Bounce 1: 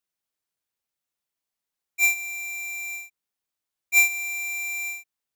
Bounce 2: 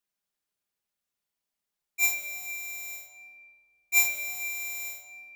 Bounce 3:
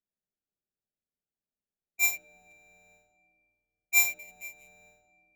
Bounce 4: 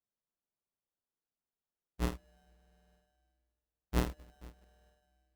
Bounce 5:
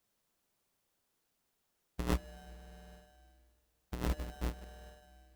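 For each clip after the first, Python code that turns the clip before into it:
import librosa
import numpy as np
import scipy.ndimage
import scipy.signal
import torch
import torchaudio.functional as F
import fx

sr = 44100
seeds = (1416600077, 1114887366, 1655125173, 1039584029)

y1 = fx.room_shoebox(x, sr, seeds[0], volume_m3=3900.0, walls='mixed', distance_m=1.3)
y1 = y1 * 10.0 ** (-1.5 / 20.0)
y2 = fx.wiener(y1, sr, points=41)
y3 = fx.sample_hold(y2, sr, seeds[1], rate_hz=2300.0, jitter_pct=0)
y3 = y3 * 10.0 ** (-7.5 / 20.0)
y4 = fx.over_compress(y3, sr, threshold_db=-42.0, ratio=-1.0)
y4 = y4 * 10.0 ** (7.5 / 20.0)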